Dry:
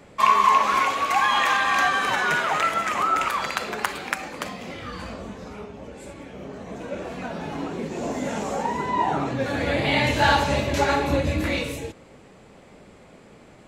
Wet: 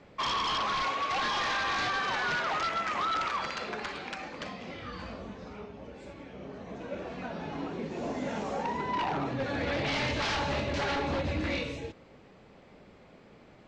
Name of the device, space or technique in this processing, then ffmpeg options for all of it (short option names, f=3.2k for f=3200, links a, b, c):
synthesiser wavefolder: -af "aeval=exprs='0.112*(abs(mod(val(0)/0.112+3,4)-2)-1)':c=same,lowpass=f=5.7k:w=0.5412,lowpass=f=5.7k:w=1.3066,volume=-6dB"